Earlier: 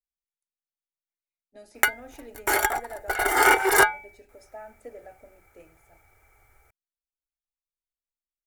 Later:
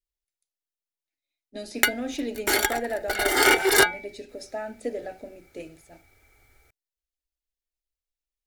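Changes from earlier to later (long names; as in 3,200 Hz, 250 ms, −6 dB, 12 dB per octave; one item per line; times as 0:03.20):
speech +11.0 dB
master: add octave-band graphic EQ 250/1,000/4,000 Hz +7/−7/+10 dB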